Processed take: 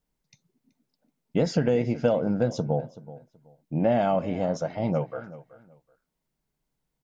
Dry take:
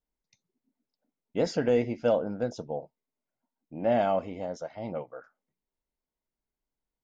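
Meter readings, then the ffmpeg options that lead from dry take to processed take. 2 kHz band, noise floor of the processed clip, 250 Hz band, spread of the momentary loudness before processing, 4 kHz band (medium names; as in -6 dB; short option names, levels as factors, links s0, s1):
+2.0 dB, -81 dBFS, +6.0 dB, 13 LU, +2.5 dB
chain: -filter_complex "[0:a]equalizer=f=150:t=o:w=0.66:g=11.5,acompressor=threshold=0.0447:ratio=5,asplit=2[s0][s1];[s1]adelay=378,lowpass=f=4400:p=1,volume=0.141,asplit=2[s2][s3];[s3]adelay=378,lowpass=f=4400:p=1,volume=0.23[s4];[s2][s4]amix=inputs=2:normalize=0[s5];[s0][s5]amix=inputs=2:normalize=0,volume=2.37"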